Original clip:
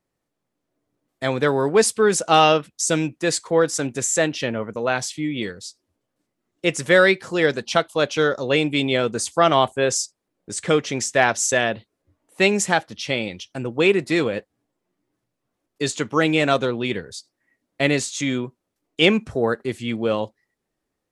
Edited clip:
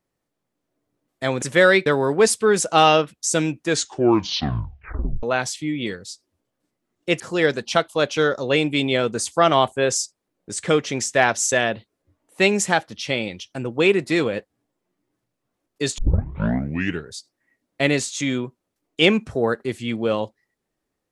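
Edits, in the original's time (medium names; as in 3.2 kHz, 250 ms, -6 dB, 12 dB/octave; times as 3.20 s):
3.20 s: tape stop 1.59 s
6.76–7.20 s: move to 1.42 s
15.98 s: tape start 1.13 s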